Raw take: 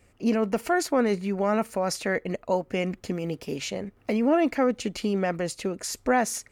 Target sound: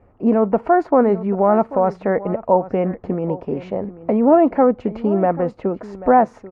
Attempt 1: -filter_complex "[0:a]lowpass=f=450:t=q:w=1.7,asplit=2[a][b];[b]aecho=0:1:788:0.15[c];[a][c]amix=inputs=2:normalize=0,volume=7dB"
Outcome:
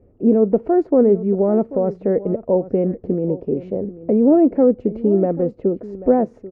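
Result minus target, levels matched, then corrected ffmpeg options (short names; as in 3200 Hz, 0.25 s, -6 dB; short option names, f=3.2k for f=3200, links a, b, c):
1000 Hz band -11.0 dB
-filter_complex "[0:a]lowpass=f=930:t=q:w=1.7,asplit=2[a][b];[b]aecho=0:1:788:0.15[c];[a][c]amix=inputs=2:normalize=0,volume=7dB"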